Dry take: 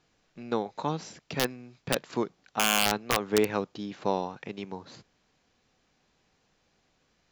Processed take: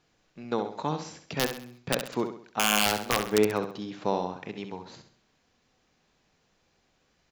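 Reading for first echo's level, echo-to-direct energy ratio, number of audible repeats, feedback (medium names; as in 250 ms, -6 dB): -8.5 dB, -7.5 dB, 4, 41%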